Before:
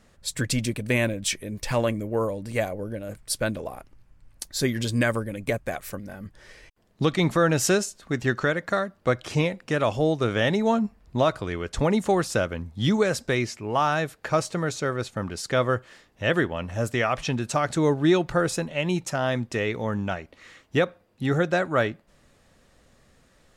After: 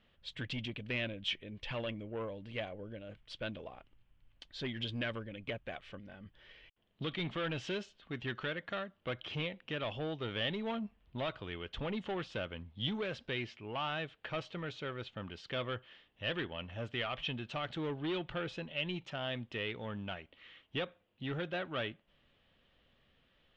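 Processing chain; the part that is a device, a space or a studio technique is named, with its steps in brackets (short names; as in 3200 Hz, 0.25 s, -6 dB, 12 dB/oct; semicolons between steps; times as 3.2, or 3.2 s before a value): overdriven synthesiser ladder filter (soft clip -19 dBFS, distortion -13 dB; ladder low-pass 3400 Hz, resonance 70%); gain -1.5 dB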